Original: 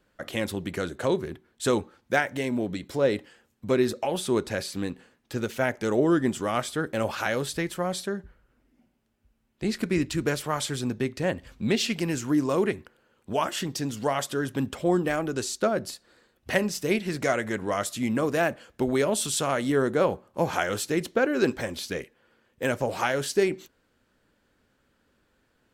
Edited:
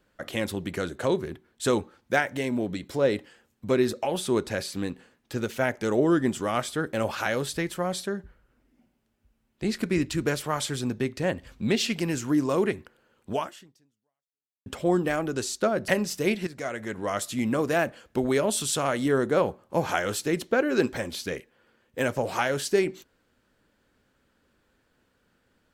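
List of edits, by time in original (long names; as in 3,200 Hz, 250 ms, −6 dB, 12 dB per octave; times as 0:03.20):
0:13.35–0:14.66: fade out exponential
0:15.88–0:16.52: remove
0:17.11–0:17.90: fade in linear, from −13 dB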